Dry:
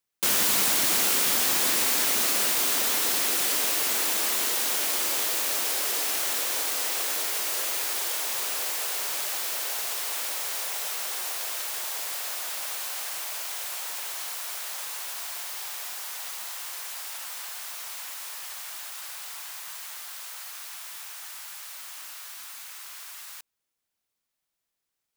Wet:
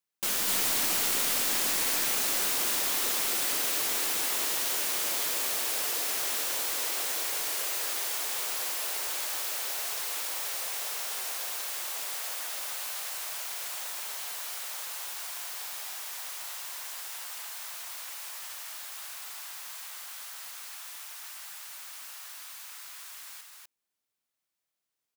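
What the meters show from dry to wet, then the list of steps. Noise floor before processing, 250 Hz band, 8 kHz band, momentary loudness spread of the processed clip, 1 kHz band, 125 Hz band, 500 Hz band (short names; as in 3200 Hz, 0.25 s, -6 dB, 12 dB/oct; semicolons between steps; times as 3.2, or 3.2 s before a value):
-83 dBFS, -4.5 dB, -3.5 dB, 15 LU, -3.5 dB, n/a, -4.0 dB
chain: one-sided fold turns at -21.5 dBFS; low shelf 65 Hz -10 dB; echo 0.248 s -3.5 dB; gain -4.5 dB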